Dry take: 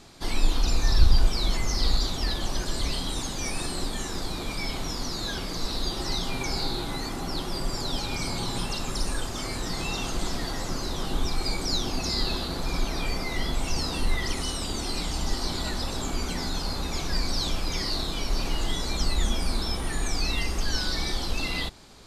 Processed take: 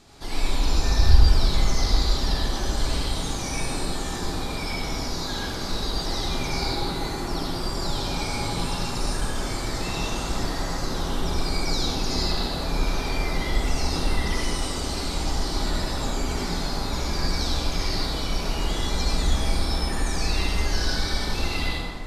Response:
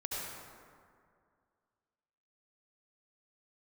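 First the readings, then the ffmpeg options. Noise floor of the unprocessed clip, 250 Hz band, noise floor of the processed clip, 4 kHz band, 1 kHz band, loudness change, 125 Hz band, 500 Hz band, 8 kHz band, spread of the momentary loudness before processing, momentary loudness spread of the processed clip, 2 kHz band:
−33 dBFS, +3.0 dB, −30 dBFS, +1.0 dB, +4.0 dB, +2.5 dB, +4.5 dB, +4.0 dB, +1.0 dB, 5 LU, 5 LU, +2.5 dB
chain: -filter_complex "[1:a]atrim=start_sample=2205[link_01];[0:a][link_01]afir=irnorm=-1:irlink=0"

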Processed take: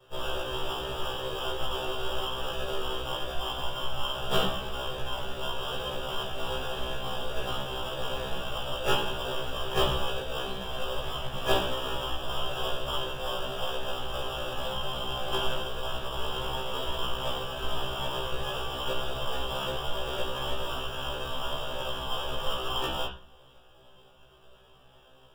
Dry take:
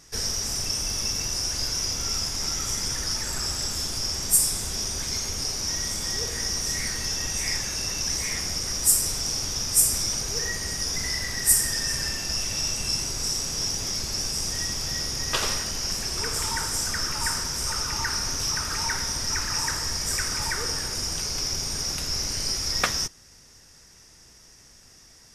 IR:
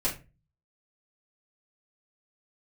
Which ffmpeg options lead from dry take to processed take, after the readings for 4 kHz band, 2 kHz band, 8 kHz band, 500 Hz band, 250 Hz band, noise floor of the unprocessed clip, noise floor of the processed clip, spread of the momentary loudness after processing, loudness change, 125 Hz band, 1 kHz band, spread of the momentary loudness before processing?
−5.5 dB, −5.0 dB, −24.5 dB, +7.5 dB, −1.5 dB, −52 dBFS, −56 dBFS, 6 LU, −7.5 dB, −3.0 dB, +3.5 dB, 7 LU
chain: -filter_complex "[0:a]acrusher=samples=21:mix=1:aa=0.000001,asplit=2[link_01][link_02];[link_02]lowpass=frequency=3200:width_type=q:width=6.8[link_03];[1:a]atrim=start_sample=2205,asetrate=28665,aresample=44100[link_04];[link_03][link_04]afir=irnorm=-1:irlink=0,volume=-11.5dB[link_05];[link_01][link_05]amix=inputs=2:normalize=0,afftfilt=real='re*1.73*eq(mod(b,3),0)':imag='im*1.73*eq(mod(b,3),0)':win_size=2048:overlap=0.75,volume=-8.5dB"

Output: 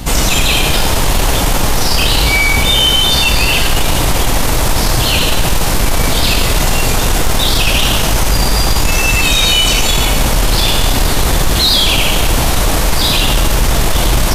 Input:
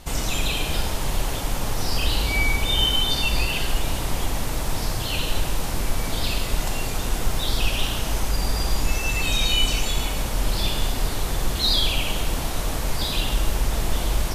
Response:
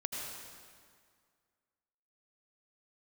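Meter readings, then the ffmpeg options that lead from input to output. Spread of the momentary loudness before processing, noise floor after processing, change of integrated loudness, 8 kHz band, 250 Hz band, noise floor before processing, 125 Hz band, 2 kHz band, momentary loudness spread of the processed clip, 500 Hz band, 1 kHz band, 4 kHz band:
7 LU, −12 dBFS, +12.5 dB, +14.5 dB, +12.5 dB, −27 dBFS, +11.5 dB, +13.5 dB, 5 LU, +13.0 dB, +13.5 dB, +12.5 dB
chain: -af "apsyclip=22.5dB,aeval=exprs='val(0)+0.126*(sin(2*PI*60*n/s)+sin(2*PI*2*60*n/s)/2+sin(2*PI*3*60*n/s)/3+sin(2*PI*4*60*n/s)/4+sin(2*PI*5*60*n/s)/5)':channel_layout=same,volume=-6.5dB"

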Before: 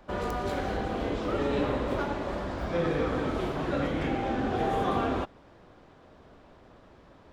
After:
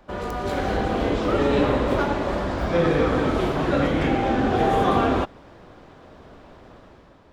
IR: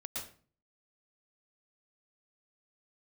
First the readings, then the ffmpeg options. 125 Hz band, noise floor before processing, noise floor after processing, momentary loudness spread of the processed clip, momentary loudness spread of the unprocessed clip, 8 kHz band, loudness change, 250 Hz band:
+8.0 dB, −55 dBFS, −51 dBFS, 6 LU, 5 LU, can't be measured, +8.0 dB, +8.0 dB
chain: -af "dynaudnorm=framelen=150:gausssize=7:maxgain=6.5dB,volume=1.5dB"

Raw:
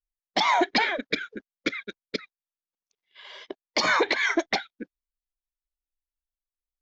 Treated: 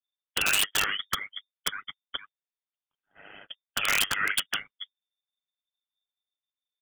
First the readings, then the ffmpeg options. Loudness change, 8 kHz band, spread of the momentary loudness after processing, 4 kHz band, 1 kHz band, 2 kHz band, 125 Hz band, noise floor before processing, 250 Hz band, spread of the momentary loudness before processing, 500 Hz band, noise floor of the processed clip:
−1.5 dB, can't be measured, 20 LU, +1.5 dB, −9.0 dB, −2.5 dB, −1.5 dB, below −85 dBFS, −16.5 dB, 21 LU, −15.0 dB, below −85 dBFS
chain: -af "aecho=1:1:7.1:0.33,lowpass=frequency=3100:width_type=q:width=0.5098,lowpass=frequency=3100:width_type=q:width=0.6013,lowpass=frequency=3100:width_type=q:width=0.9,lowpass=frequency=3100:width_type=q:width=2.563,afreqshift=-3600,aeval=exprs='(mod(5.31*val(0)+1,2)-1)/5.31':channel_layout=same,aeval=exprs='val(0)*sin(2*PI*50*n/s)':channel_layout=same"

